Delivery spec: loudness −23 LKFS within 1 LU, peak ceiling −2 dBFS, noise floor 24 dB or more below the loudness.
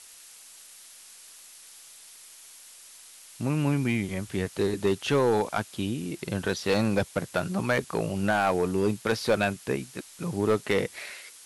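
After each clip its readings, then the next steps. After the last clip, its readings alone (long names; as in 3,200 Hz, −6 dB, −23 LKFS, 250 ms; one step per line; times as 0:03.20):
share of clipped samples 0.6%; peaks flattened at −16.5 dBFS; background noise floor −50 dBFS; target noise floor −52 dBFS; integrated loudness −27.5 LKFS; sample peak −16.5 dBFS; target loudness −23.0 LKFS
→ clipped peaks rebuilt −16.5 dBFS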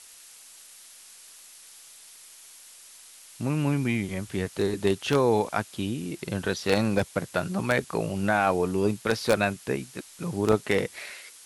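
share of clipped samples 0.0%; background noise floor −50 dBFS; target noise floor −51 dBFS
→ broadband denoise 6 dB, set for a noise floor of −50 dBFS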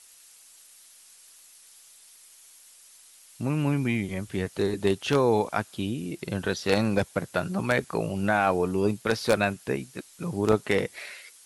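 background noise floor −54 dBFS; integrated loudness −27.0 LKFS; sample peak −7.5 dBFS; target loudness −23.0 LKFS
→ level +4 dB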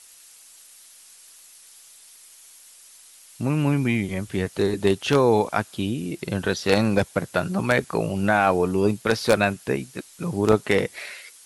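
integrated loudness −23.0 LKFS; sample peak −3.5 dBFS; background noise floor −50 dBFS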